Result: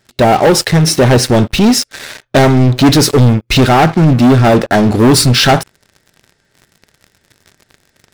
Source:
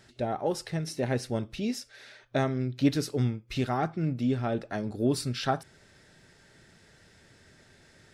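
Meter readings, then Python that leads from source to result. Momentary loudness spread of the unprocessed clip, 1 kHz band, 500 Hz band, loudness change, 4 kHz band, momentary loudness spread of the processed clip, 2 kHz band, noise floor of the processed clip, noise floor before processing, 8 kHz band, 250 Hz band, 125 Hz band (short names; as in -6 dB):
7 LU, +21.5 dB, +20.0 dB, +21.0 dB, +25.0 dB, 4 LU, +22.5 dB, -60 dBFS, -59 dBFS, +25.5 dB, +19.5 dB, +21.0 dB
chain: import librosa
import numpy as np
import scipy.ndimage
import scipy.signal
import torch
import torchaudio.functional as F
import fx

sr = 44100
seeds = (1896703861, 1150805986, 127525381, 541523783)

y = fx.leveller(x, sr, passes=5)
y = F.gain(torch.from_numpy(y), 8.5).numpy()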